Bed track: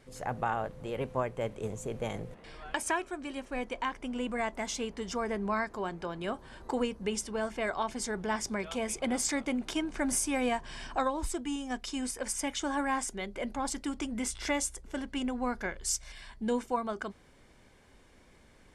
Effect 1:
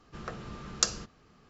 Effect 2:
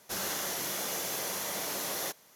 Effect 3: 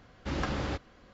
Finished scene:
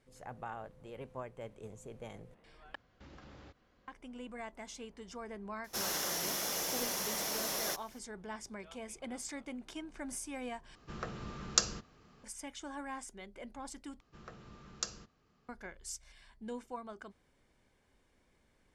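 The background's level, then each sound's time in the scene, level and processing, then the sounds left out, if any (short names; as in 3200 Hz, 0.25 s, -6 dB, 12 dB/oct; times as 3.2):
bed track -12 dB
2.75 replace with 3 -12.5 dB + compressor 3:1, threshold -41 dBFS
5.64 add 2 -2.5 dB + bell 5400 Hz +6.5 dB 0.2 oct
10.75 replace with 1 -1.5 dB
14 replace with 1 -11.5 dB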